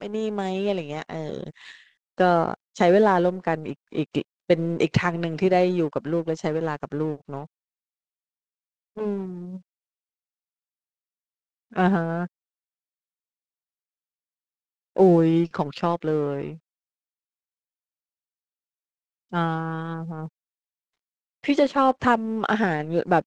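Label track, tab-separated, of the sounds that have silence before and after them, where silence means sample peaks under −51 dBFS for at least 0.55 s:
8.960000	9.620000	sound
11.710000	12.270000	sound
14.960000	16.590000	sound
19.310000	20.290000	sound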